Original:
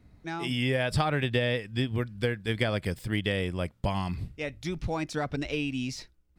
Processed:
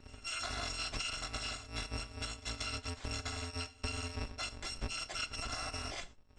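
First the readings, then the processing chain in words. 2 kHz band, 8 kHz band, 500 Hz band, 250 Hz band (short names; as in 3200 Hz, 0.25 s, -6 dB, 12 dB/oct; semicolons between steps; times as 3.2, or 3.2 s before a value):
-9.0 dB, +4.0 dB, -17.5 dB, -18.0 dB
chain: FFT order left unsorted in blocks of 256 samples; tone controls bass -2 dB, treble -9 dB; compressor 6:1, threshold -42 dBFS, peak gain reduction 13.5 dB; elliptic low-pass 8000 Hz, stop band 50 dB; pre-echo 0.184 s -21.5 dB; non-linear reverb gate 0.14 s falling, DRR 12 dB; gain +8.5 dB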